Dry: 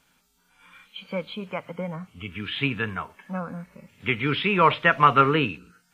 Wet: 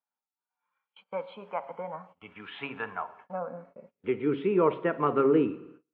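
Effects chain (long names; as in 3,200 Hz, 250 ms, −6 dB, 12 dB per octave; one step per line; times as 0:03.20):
hum removal 137.3 Hz, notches 7
band-pass filter sweep 830 Hz → 360 Hz, 0:02.92–0:04.35
spring reverb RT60 1.1 s, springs 55 ms, chirp 75 ms, DRR 16.5 dB
noise gate −56 dBFS, range −26 dB
level +4.5 dB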